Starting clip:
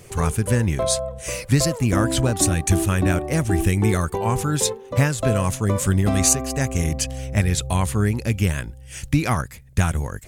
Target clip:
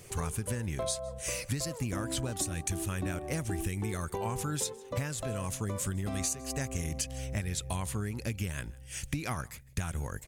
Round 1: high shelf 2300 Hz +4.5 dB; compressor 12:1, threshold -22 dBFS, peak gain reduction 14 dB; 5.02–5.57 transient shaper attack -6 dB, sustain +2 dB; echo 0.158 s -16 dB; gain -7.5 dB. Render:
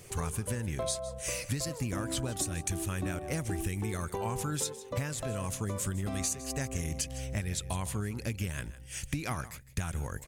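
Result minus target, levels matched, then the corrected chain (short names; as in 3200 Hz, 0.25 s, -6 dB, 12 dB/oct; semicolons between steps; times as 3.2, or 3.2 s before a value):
echo-to-direct +8 dB
high shelf 2300 Hz +4.5 dB; compressor 12:1, threshold -22 dBFS, peak gain reduction 14 dB; 5.02–5.57 transient shaper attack -6 dB, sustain +2 dB; echo 0.158 s -24 dB; gain -7.5 dB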